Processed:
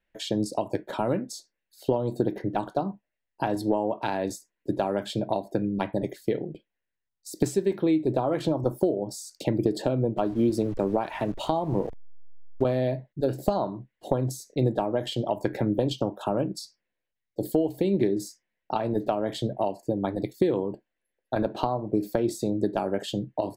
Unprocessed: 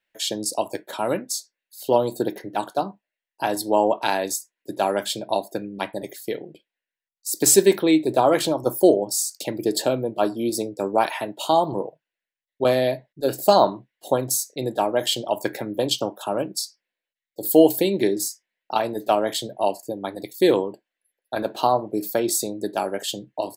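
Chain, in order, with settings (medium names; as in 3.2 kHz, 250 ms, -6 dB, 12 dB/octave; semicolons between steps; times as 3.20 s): 10.17–12.64 s: send-on-delta sampling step -41 dBFS; compression 10:1, threshold -24 dBFS, peak gain reduction 16.5 dB; RIAA curve playback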